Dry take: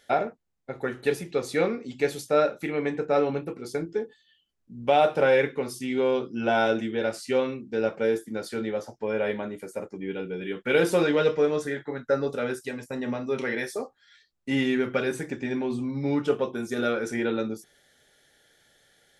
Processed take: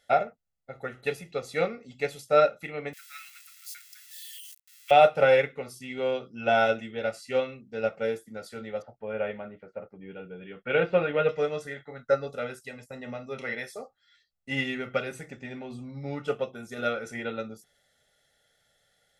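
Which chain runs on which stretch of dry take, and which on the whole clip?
2.93–4.91 switching spikes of -28 dBFS + steep high-pass 1600 Hz
8.82–11.29 LPF 2900 Hz 24 dB/oct + notch 2000 Hz, Q 17
whole clip: comb 1.5 ms, depth 61%; dynamic EQ 2500 Hz, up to +5 dB, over -46 dBFS, Q 2; upward expander 1.5:1, over -30 dBFS

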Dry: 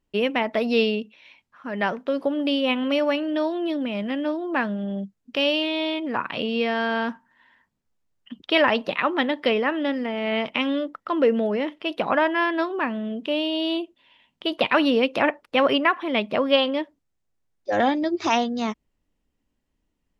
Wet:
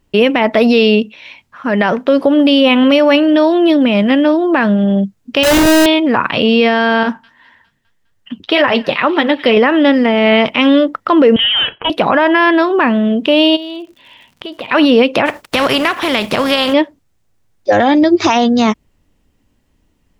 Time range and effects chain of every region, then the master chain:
5.43–5.86 high shelf 4800 Hz -9 dB + Schmitt trigger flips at -29 dBFS + companded quantiser 4-bit
7.03–9.57 thin delay 0.204 s, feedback 52%, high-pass 2700 Hz, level -17 dB + flange 1.8 Hz, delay 1.3 ms, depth 8.7 ms, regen -45%
11.36–11.9 HPF 450 Hz 24 dB/oct + hard clip -26 dBFS + inverted band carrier 3600 Hz
13.55–14.67 compressor 4:1, threshold -42 dBFS + crackle 95/s -53 dBFS
15.25–16.72 spectral contrast lowered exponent 0.58 + compressor 2.5:1, threshold -28 dBFS
whole clip: bell 100 Hz +5.5 dB 0.83 oct; maximiser +16.5 dB; gain -1 dB

